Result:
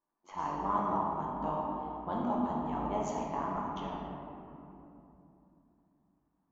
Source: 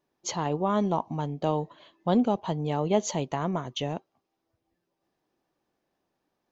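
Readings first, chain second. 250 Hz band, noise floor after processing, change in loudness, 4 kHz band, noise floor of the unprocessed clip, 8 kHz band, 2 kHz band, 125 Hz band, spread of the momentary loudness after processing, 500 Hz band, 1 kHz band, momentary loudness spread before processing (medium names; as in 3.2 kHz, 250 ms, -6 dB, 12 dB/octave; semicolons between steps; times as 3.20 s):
-8.0 dB, -79 dBFS, -6.5 dB, -16.5 dB, -81 dBFS, no reading, -7.0 dB, -12.0 dB, 16 LU, -9.0 dB, -1.0 dB, 9 LU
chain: AM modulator 94 Hz, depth 70%; graphic EQ 125/250/500/1000/4000 Hz -12/+3/-8/+10/-11 dB; simulated room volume 130 m³, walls hard, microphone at 0.65 m; level-controlled noise filter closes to 2 kHz, open at -19 dBFS; trim -9 dB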